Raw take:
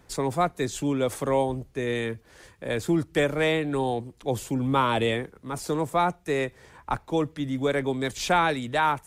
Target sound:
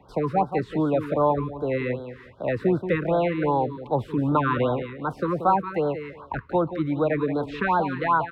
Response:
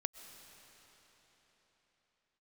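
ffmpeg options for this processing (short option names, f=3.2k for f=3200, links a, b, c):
-filter_complex "[0:a]highpass=49,acrossover=split=280[a][b];[b]acompressor=threshold=-30dB:ratio=1.5[c];[a][c]amix=inputs=2:normalize=0,firequalizer=gain_entry='entry(360,0);entry(770,6);entry(6700,-29);entry(11000,-25)':delay=0.05:min_phase=1,asetrate=48069,aresample=44100,equalizer=f=7.7k:w=5:g=2.5,aecho=1:1:179|358|537:0.316|0.0632|0.0126,acrossover=split=3700[d][e];[e]acompressor=threshold=-58dB:ratio=4:attack=1:release=60[f];[d][f]amix=inputs=2:normalize=0,afftfilt=real='re*(1-between(b*sr/1024,640*pow(2300/640,0.5+0.5*sin(2*PI*2.6*pts/sr))/1.41,640*pow(2300/640,0.5+0.5*sin(2*PI*2.6*pts/sr))*1.41))':imag='im*(1-between(b*sr/1024,640*pow(2300/640,0.5+0.5*sin(2*PI*2.6*pts/sr))/1.41,640*pow(2300/640,0.5+0.5*sin(2*PI*2.6*pts/sr))*1.41))':win_size=1024:overlap=0.75,volume=3dB"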